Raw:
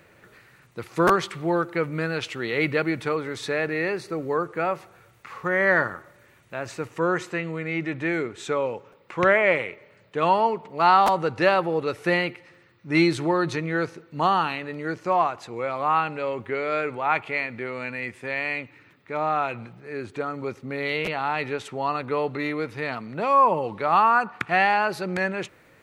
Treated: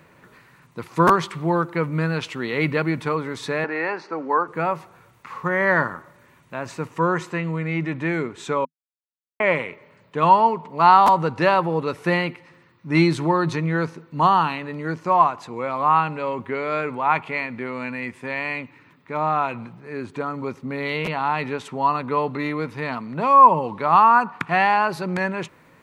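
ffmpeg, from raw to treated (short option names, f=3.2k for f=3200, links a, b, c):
-filter_complex "[0:a]asettb=1/sr,asplit=3[a][b][c];[a]atrim=end=3.644[d];[b]atrim=start=3.64:end=4.48,asetpts=PTS-STARTPTS,afade=t=in:d=0.004:c=qsin,afade=t=out:st=0.836:d=0.004:c=qsin,highpass=f=250:w=0.5412,highpass=f=250:w=1.3066,equalizer=f=380:t=q:w=4:g=-5,equalizer=f=850:t=q:w=4:g=8,equalizer=f=1.5k:t=q:w=4:g=6,equalizer=f=3.7k:t=q:w=4:g=-7,lowpass=f=5.4k:w=0.5412,lowpass=f=5.4k:w=1.3066[e];[c]atrim=start=4.476[f];[d][e]acrossfade=d=0.004:c1=hsin:c2=qsin[g];[g][f]acrossfade=d=0.004:c1=qsin:c2=hsin,asplit=3[h][i][j];[h]atrim=end=8.65,asetpts=PTS-STARTPTS,afade=t=out:st=8.646:d=0.004:c=hsin[k];[i]atrim=start=8.65:end=9.4,asetpts=PTS-STARTPTS,volume=0[l];[j]atrim=start=9.4,asetpts=PTS-STARTPTS,afade=t=in:d=0.004:c=hsin[m];[k][l][m]concat=n=3:v=0:a=1,equalizer=f=160:t=o:w=0.33:g=8,equalizer=f=250:t=o:w=0.33:g=7,equalizer=f=1k:t=o:w=0.33:g=10"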